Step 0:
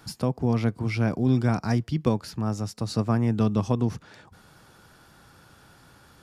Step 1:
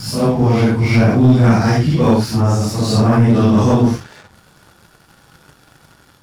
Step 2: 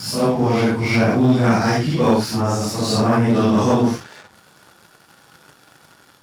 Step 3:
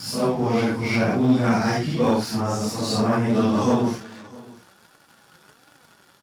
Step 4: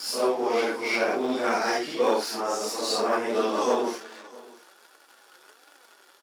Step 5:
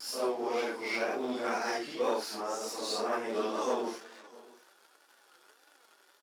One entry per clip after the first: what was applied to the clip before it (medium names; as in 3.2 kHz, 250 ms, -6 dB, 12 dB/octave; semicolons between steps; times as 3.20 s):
phase randomisation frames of 200 ms; waveshaping leveller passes 2; trim +6.5 dB
high-pass 270 Hz 6 dB/octave
flange 1.4 Hz, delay 3.3 ms, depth 2.4 ms, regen +64%; delay 657 ms -22 dB
Chebyshev high-pass 370 Hz, order 3
vibrato 2 Hz 53 cents; trim -7.5 dB